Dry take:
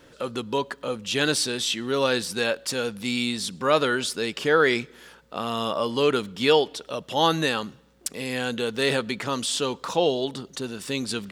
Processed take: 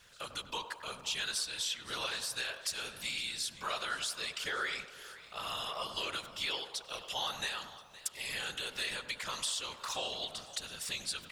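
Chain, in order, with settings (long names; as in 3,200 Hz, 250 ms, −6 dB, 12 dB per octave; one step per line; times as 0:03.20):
guitar amp tone stack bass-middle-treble 10-0-10
downward compressor 4 to 1, threshold −34 dBFS, peak gain reduction 10.5 dB
random phases in short frames
feedback echo with a band-pass in the loop 96 ms, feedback 70%, band-pass 710 Hz, level −9 dB
feedback echo with a swinging delay time 514 ms, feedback 53%, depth 98 cents, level −18 dB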